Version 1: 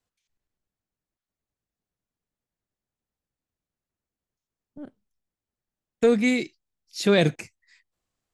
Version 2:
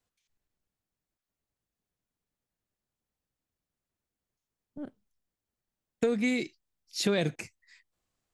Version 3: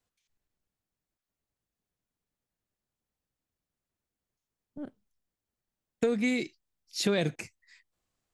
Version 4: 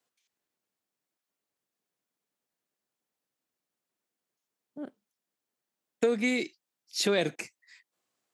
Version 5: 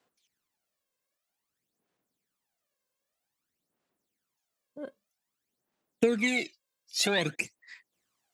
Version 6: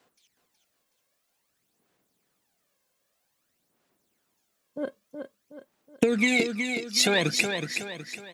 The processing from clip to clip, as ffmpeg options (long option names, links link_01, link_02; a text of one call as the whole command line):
ffmpeg -i in.wav -af "acompressor=threshold=-25dB:ratio=4" out.wav
ffmpeg -i in.wav -af anull out.wav
ffmpeg -i in.wav -af "highpass=260,volume=2.5dB" out.wav
ffmpeg -i in.wav -af "aphaser=in_gain=1:out_gain=1:delay=1.9:decay=0.68:speed=0.52:type=sinusoidal" out.wav
ffmpeg -i in.wav -filter_complex "[0:a]acompressor=threshold=-27dB:ratio=6,asplit=2[link_01][link_02];[link_02]aecho=0:1:370|740|1110|1480|1850:0.473|0.199|0.0835|0.0351|0.0147[link_03];[link_01][link_03]amix=inputs=2:normalize=0,volume=8.5dB" out.wav